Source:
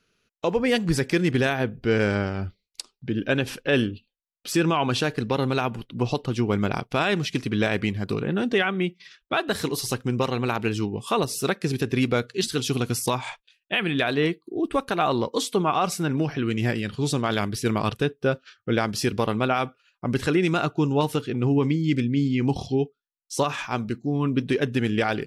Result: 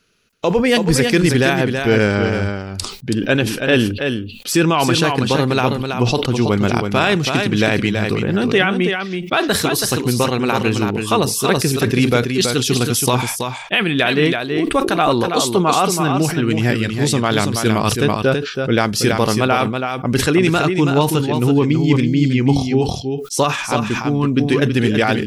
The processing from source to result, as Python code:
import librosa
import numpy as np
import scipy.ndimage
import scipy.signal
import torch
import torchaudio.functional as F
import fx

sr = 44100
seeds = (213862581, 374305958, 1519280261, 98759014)

y = fx.high_shelf(x, sr, hz=4700.0, db=4.5)
y = y + 10.0 ** (-6.0 / 20.0) * np.pad(y, (int(327 * sr / 1000.0), 0))[:len(y)]
y = fx.sustainer(y, sr, db_per_s=76.0)
y = F.gain(torch.from_numpy(y), 6.5).numpy()